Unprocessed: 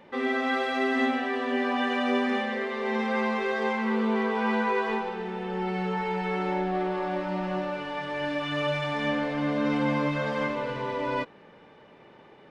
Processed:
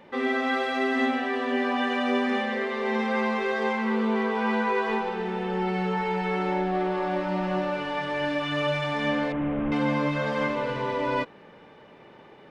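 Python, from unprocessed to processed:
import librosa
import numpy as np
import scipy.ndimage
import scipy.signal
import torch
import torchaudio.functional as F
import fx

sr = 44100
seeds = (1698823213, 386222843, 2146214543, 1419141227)

p1 = fx.delta_mod(x, sr, bps=16000, step_db=-43.5, at=(9.32, 9.72))
p2 = fx.rider(p1, sr, range_db=10, speed_s=0.5)
p3 = p1 + (p2 * librosa.db_to_amplitude(-1.0))
y = p3 * librosa.db_to_amplitude(-4.0)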